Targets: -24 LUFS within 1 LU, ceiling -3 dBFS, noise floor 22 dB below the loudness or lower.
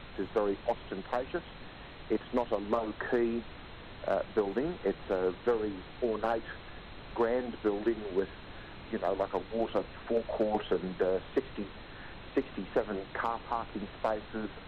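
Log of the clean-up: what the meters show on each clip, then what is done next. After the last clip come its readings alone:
clipped 0.3%; flat tops at -20.0 dBFS; noise floor -48 dBFS; noise floor target -56 dBFS; loudness -33.5 LUFS; peak -20.0 dBFS; loudness target -24.0 LUFS
-> clip repair -20 dBFS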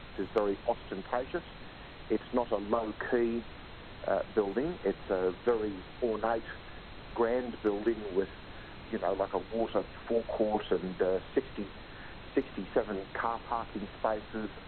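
clipped 0.0%; noise floor -48 dBFS; noise floor target -56 dBFS
-> noise print and reduce 8 dB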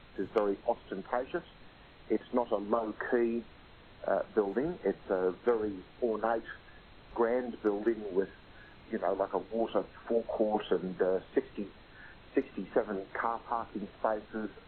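noise floor -56 dBFS; loudness -33.5 LUFS; peak -13.0 dBFS; loudness target -24.0 LUFS
-> gain +9.5 dB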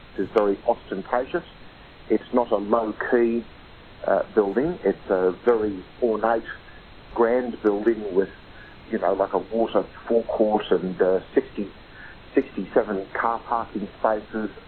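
loudness -24.0 LUFS; peak -3.5 dBFS; noise floor -46 dBFS

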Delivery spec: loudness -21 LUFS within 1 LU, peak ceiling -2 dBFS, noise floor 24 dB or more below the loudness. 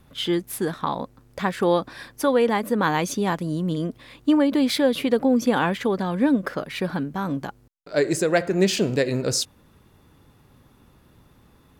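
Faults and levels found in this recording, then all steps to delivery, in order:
loudness -23.0 LUFS; peak -8.0 dBFS; loudness target -21.0 LUFS
-> gain +2 dB

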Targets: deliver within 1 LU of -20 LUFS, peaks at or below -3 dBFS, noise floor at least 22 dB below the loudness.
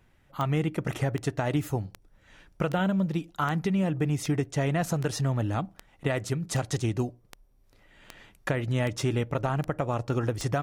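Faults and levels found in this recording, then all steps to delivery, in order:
clicks 14; loudness -29.0 LUFS; peak -14.0 dBFS; loudness target -20.0 LUFS
-> de-click; gain +9 dB

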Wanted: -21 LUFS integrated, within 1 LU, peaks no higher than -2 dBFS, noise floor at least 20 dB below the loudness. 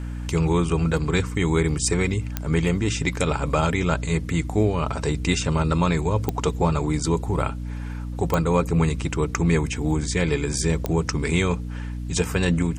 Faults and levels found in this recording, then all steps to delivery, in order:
clicks 4; hum 60 Hz; harmonics up to 300 Hz; hum level -28 dBFS; loudness -23.5 LUFS; peak -7.0 dBFS; loudness target -21.0 LUFS
-> de-click; de-hum 60 Hz, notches 5; gain +2.5 dB

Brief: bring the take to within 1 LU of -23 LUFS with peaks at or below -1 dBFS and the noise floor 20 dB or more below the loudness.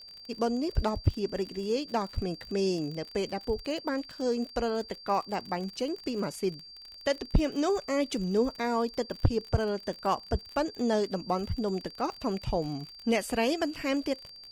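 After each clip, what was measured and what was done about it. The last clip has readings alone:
ticks 41/s; steady tone 4700 Hz; tone level -46 dBFS; loudness -31.0 LUFS; peak -14.0 dBFS; loudness target -23.0 LUFS
-> de-click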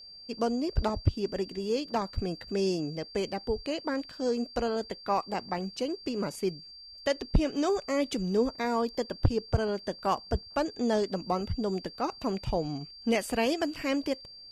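ticks 0.14/s; steady tone 4700 Hz; tone level -46 dBFS
-> notch 4700 Hz, Q 30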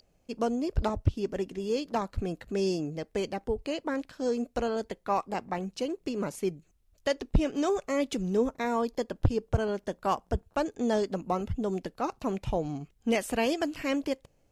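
steady tone none; loudness -31.0 LUFS; peak -14.5 dBFS; loudness target -23.0 LUFS
-> gain +8 dB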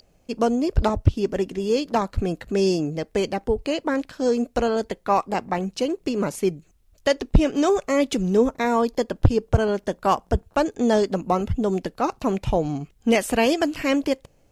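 loudness -23.0 LUFS; peak -6.5 dBFS; noise floor -60 dBFS

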